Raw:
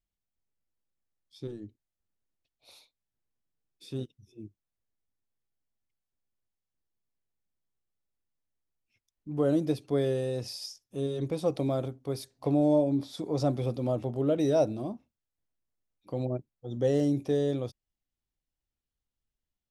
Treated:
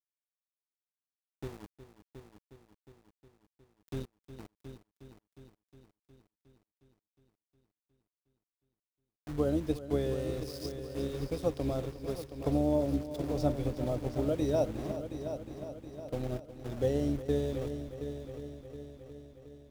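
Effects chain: octave divider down 2 oct, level -5 dB; small samples zeroed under -39 dBFS; on a send: multi-head delay 361 ms, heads first and second, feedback 58%, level -12 dB; on the sum: transient shaper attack +4 dB, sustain -2 dB; trim -5.5 dB

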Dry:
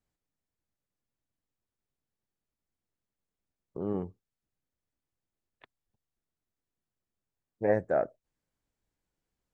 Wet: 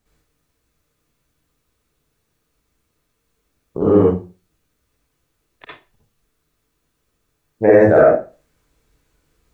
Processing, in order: reverberation RT60 0.30 s, pre-delay 52 ms, DRR -8 dB; loudness maximiser +14.5 dB; trim -1 dB

